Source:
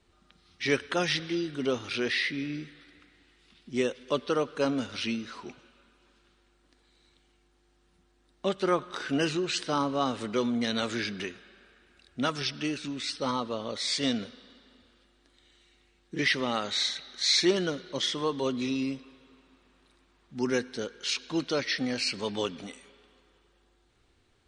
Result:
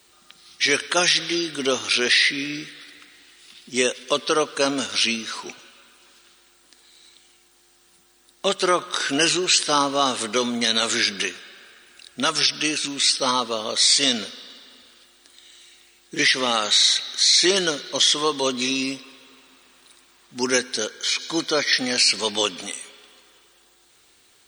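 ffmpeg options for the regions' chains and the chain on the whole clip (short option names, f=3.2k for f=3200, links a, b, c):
-filter_complex "[0:a]asettb=1/sr,asplit=3[a][b][c];[a]atrim=end=20.904[d];[b]atrim=start=20.9:end=21.73,asetpts=PTS-STARTPTS,afade=t=in:d=0.004:c=qsin,afade=t=out:st=0.826:d=0.004:c=qsin,acrossover=split=2700[e][f];[f]acompressor=threshold=-41dB:ratio=4:attack=1:release=60[g];[e][g]amix=inputs=2:normalize=0,asuperstop=centerf=2700:order=12:qfactor=6.5[h];[c]atrim=start=21.726[i];[d][h]acrossfade=d=0.004:c1=hsin:c2=qsin[j];[j][i]acrossfade=d=0.004:c1=qsin:c2=hsin,aemphasis=mode=production:type=riaa,alimiter=level_in=15dB:limit=-1dB:release=50:level=0:latency=1,volume=-6dB"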